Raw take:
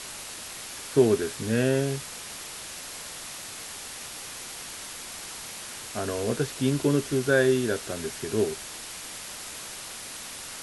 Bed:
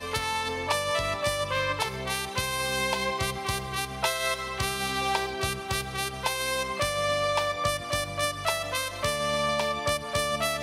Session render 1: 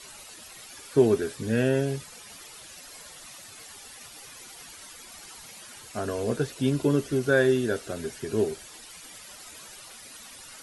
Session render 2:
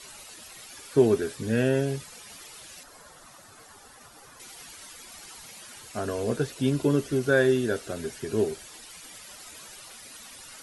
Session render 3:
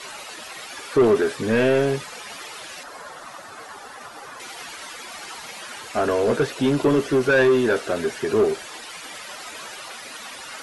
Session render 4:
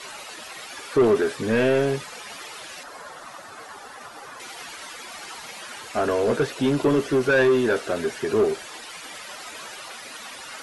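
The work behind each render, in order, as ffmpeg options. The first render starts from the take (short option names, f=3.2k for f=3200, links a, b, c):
-af "afftdn=nr=12:nf=-40"
-filter_complex "[0:a]asettb=1/sr,asplit=3[a][b][c];[a]atrim=end=2.834[d];[b]atrim=start=2.83:end=4.4,asetpts=PTS-STARTPTS,afade=t=in:d=0.004:c=qsin,afade=t=out:st=1.566:d=0.004:c=qsin,highshelf=f=1.8k:t=q:w=1.5:g=-7[e];[c]atrim=start=4.396[f];[d][e]acrossfade=d=0.004:c1=hsin:c2=qsin[g];[g][f]acrossfade=d=0.004:c1=qsin:c2=hsin"
-filter_complex "[0:a]asplit=2[a][b];[b]highpass=f=720:p=1,volume=23dB,asoftclip=type=tanh:threshold=-8dB[c];[a][c]amix=inputs=2:normalize=0,lowpass=f=1.6k:p=1,volume=-6dB"
-af "volume=-1.5dB"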